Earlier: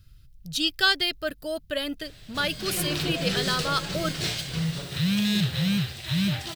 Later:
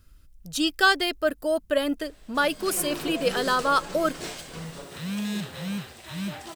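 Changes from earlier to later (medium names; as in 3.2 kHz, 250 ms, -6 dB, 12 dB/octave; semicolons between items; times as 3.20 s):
background -7.0 dB; master: add graphic EQ 125/250/500/1000/4000/8000 Hz -12/+7/+5/+8/-6/+5 dB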